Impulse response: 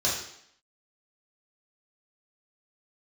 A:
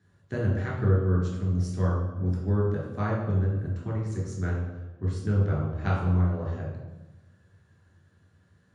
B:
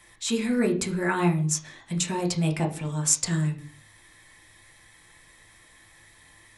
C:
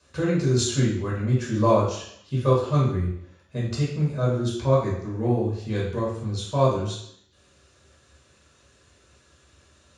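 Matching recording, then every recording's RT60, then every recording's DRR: C; 1.1, 0.45, 0.70 s; -5.0, 2.0, -7.0 dB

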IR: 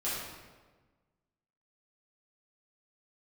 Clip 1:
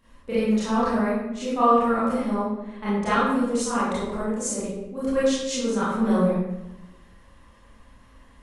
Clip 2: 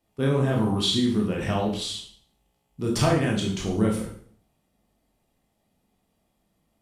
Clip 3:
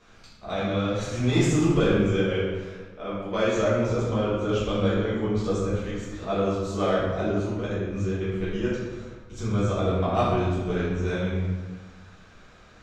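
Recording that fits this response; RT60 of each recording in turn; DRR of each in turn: 3; 1.0, 0.50, 1.4 s; -11.5, -1.5, -11.0 dB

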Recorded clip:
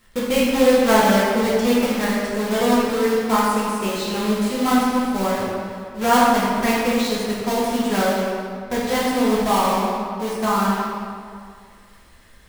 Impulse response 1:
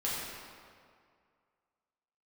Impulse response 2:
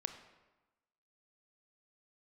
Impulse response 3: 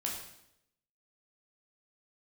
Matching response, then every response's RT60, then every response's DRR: 1; 2.1, 1.1, 0.80 s; -8.0, 7.5, -2.0 dB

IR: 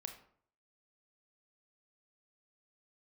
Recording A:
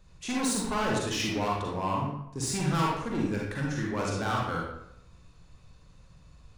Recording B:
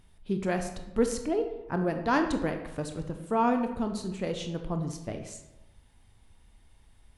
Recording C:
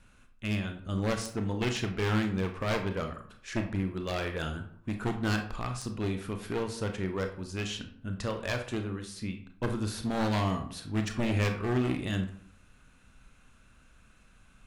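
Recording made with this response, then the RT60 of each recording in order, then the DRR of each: C; 0.80, 1.0, 0.60 s; -3.5, 5.5, 5.0 dB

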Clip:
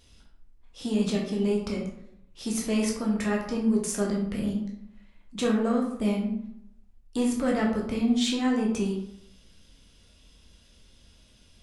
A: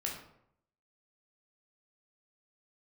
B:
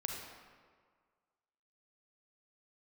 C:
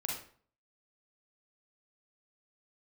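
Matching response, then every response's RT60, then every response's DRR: A; 0.70, 1.8, 0.50 s; -2.0, 0.5, -2.5 dB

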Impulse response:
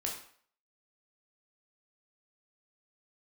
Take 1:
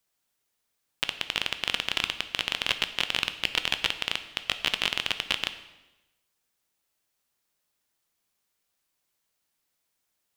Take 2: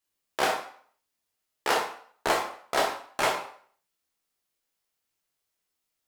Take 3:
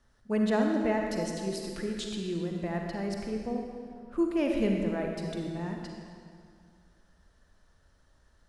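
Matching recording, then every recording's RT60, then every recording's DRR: 2; 1.0, 0.55, 2.2 s; 9.5, -1.5, 1.0 dB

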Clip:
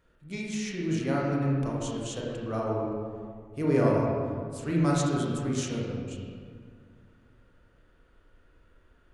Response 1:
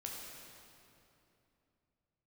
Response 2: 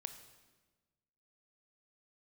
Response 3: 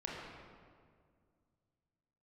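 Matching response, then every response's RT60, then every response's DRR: 3; 2.9, 1.3, 2.0 s; -2.5, 8.5, -4.5 dB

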